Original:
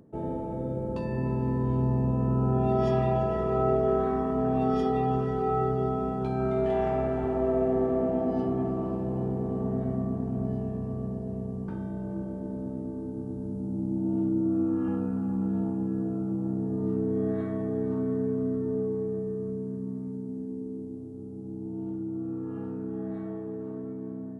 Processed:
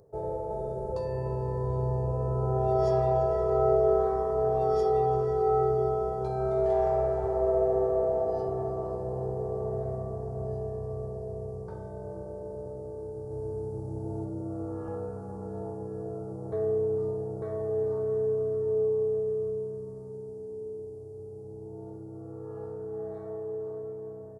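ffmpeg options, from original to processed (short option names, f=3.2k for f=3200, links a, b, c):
-filter_complex "[0:a]asettb=1/sr,asplit=3[a][b][c];[a]atrim=end=0.504[d];[b]atrim=start=0.5:end=0.92,asetpts=PTS-STARTPTS,afade=t=in:d=0.004:c=qsin,afade=t=out:st=0.416:d=0.004:c=qsin,aecho=1:1:4.8:0.74,atrim=end_sample=18522[e];[c]atrim=start=0.916[f];[d][e]acrossfade=d=0.004:c1=hsin:c2=qsin[g];[g][f]acrossfade=d=0.004:c1=qsin:c2=hsin,asplit=2[h][i];[i]afade=t=in:st=12.73:d=0.01,afade=t=out:st=13.66:d=0.01,aecho=0:1:580|1160|1740|2320|2900:0.794328|0.278015|0.0973052|0.0340568|0.0119199[j];[h][j]amix=inputs=2:normalize=0,asplit=3[k][l][m];[k]atrim=end=16.522[n];[l]atrim=start=16.518:end=17.422,asetpts=PTS-STARTPTS,areverse[o];[m]atrim=start=17.418[p];[n][o]acrossfade=d=0.004:c1=hsin:c2=hsin[q];[q][p]acrossfade=d=0.004:c1=hsin:c2=hsin,firequalizer=gain_entry='entry(110,0);entry(250,-24);entry(420,5);entry(1200,-3);entry(2800,-14);entry(4600,3)':delay=0.05:min_phase=1"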